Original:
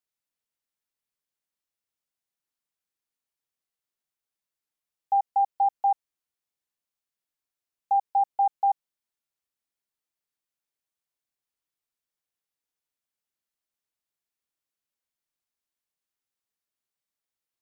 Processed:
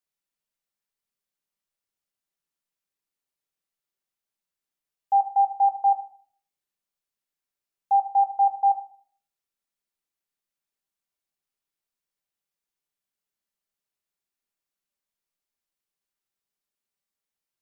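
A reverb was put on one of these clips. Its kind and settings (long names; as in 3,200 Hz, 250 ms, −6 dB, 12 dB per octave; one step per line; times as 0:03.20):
rectangular room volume 600 cubic metres, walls furnished, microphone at 1.2 metres
level −1 dB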